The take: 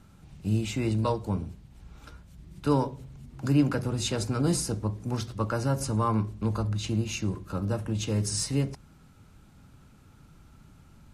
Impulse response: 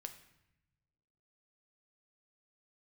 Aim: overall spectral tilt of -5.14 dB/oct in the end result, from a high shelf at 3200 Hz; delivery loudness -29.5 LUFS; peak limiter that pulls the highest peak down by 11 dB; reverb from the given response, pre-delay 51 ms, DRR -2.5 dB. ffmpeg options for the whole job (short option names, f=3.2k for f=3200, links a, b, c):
-filter_complex "[0:a]highshelf=f=3.2k:g=3,alimiter=limit=-21.5dB:level=0:latency=1,asplit=2[a][b];[1:a]atrim=start_sample=2205,adelay=51[c];[b][c]afir=irnorm=-1:irlink=0,volume=6.5dB[d];[a][d]amix=inputs=2:normalize=0,volume=-2dB"